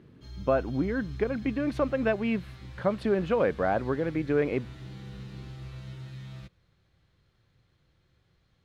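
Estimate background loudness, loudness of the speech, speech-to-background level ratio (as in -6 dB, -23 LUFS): -44.0 LUFS, -28.5 LUFS, 15.5 dB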